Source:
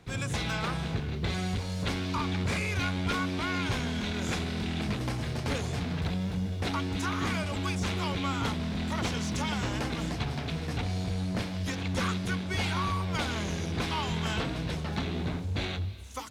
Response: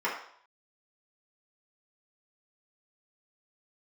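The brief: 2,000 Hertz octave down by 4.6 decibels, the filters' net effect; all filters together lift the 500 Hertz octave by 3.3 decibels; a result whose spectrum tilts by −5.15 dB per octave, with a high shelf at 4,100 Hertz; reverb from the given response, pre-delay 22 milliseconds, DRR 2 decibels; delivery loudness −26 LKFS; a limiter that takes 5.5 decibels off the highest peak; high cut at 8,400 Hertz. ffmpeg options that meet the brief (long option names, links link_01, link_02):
-filter_complex "[0:a]lowpass=8400,equalizer=frequency=500:width_type=o:gain=4.5,equalizer=frequency=2000:width_type=o:gain=-8.5,highshelf=frequency=4100:gain=8,alimiter=limit=-23dB:level=0:latency=1,asplit=2[link_01][link_02];[1:a]atrim=start_sample=2205,adelay=22[link_03];[link_02][link_03]afir=irnorm=-1:irlink=0,volume=-12.5dB[link_04];[link_01][link_04]amix=inputs=2:normalize=0,volume=5.5dB"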